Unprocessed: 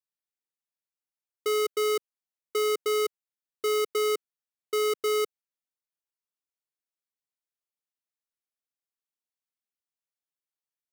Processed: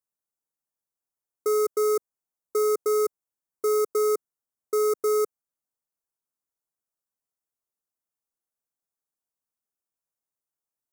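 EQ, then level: Butterworth band-stop 3000 Hz, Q 0.63; +3.5 dB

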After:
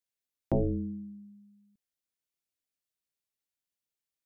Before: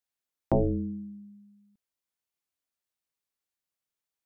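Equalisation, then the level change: bell 1000 Hz -7.5 dB 1.2 oct; -2.0 dB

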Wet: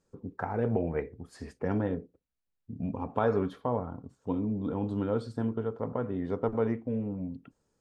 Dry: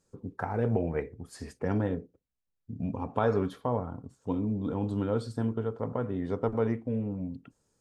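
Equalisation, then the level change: bell 110 Hz -3 dB; high shelf 5600 Hz -11 dB; 0.0 dB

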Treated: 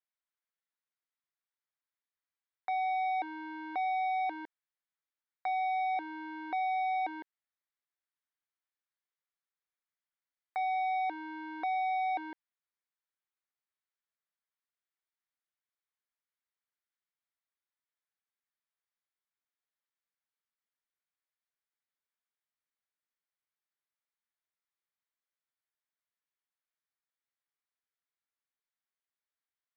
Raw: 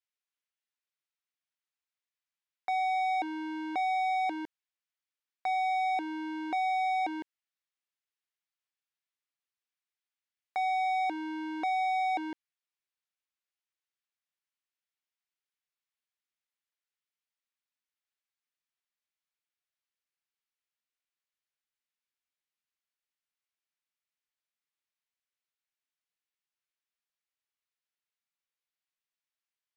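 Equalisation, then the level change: HPF 1100 Hz 6 dB/oct; air absorption 320 m; bell 2700 Hz -8 dB 0.38 oct; +4.0 dB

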